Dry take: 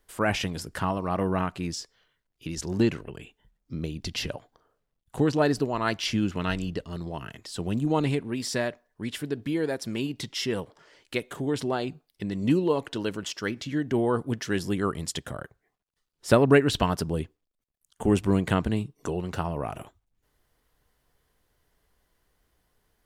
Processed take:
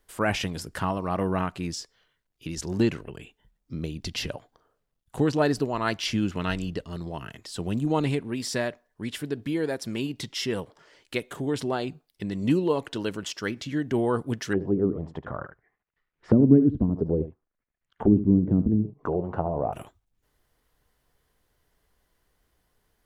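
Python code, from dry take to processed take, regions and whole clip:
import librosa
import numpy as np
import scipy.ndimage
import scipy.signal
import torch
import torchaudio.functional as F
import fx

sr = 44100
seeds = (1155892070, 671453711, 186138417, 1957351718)

y = fx.chain(x, sr, fx.echo_single(ms=75, db=-12.5),
    fx.envelope_lowpass(base_hz=260.0, top_hz=2100.0, q=2.3, full_db=-20.5, direction='down'), at=(14.53, 19.73))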